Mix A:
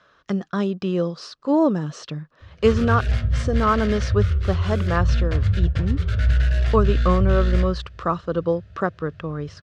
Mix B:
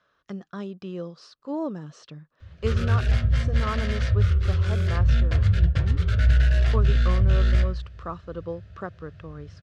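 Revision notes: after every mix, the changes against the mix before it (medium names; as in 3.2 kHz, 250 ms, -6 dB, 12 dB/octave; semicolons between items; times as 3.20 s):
speech -11.5 dB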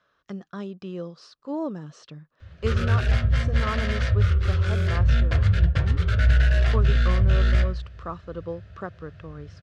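background: add peaking EQ 1.1 kHz +4.5 dB 3 oct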